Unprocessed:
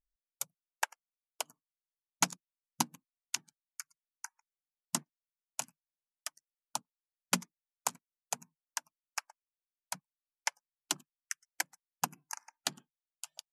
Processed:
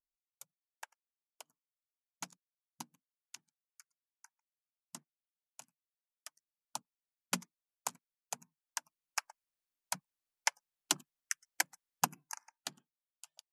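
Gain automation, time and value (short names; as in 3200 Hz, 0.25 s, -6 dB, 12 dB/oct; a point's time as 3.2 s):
5.63 s -16 dB
6.76 s -5 dB
8.41 s -5 dB
9.26 s +2 dB
12.05 s +2 dB
12.77 s -9.5 dB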